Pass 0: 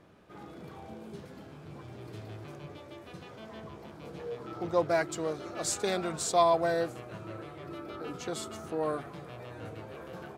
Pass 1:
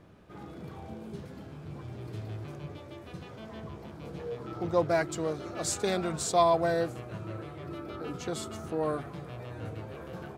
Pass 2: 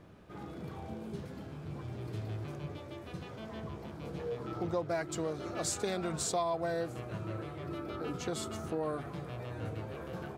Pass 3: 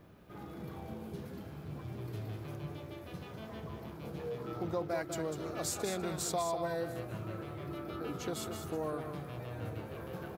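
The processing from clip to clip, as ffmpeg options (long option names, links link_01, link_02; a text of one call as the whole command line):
ffmpeg -i in.wav -af "lowshelf=frequency=170:gain=9" out.wav
ffmpeg -i in.wav -af "acompressor=threshold=-31dB:ratio=4" out.wav
ffmpeg -i in.wav -filter_complex "[0:a]acrossover=split=2200[link_01][link_02];[link_02]aexciter=amount=4:drive=3.9:freq=11000[link_03];[link_01][link_03]amix=inputs=2:normalize=0,aecho=1:1:198:0.398,volume=-2dB" out.wav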